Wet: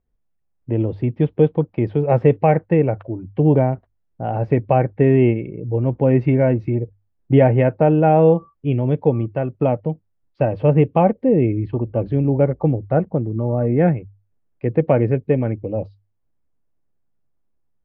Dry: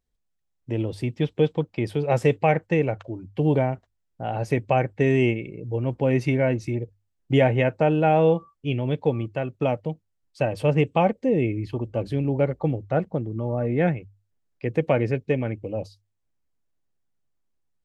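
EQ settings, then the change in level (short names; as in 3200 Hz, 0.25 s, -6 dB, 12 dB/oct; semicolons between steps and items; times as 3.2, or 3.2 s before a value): LPF 1200 Hz 6 dB/oct; air absorption 330 m; +7.0 dB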